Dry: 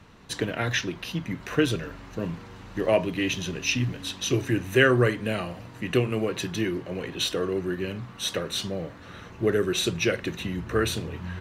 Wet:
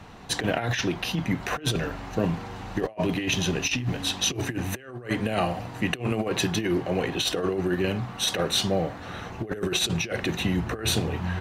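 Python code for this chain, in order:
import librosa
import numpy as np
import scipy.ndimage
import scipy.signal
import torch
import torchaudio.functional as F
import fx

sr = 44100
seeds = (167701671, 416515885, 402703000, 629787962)

y = fx.peak_eq(x, sr, hz=760.0, db=10.0, octaves=0.35)
y = fx.over_compress(y, sr, threshold_db=-28.0, ratio=-0.5)
y = F.gain(torch.from_numpy(y), 2.5).numpy()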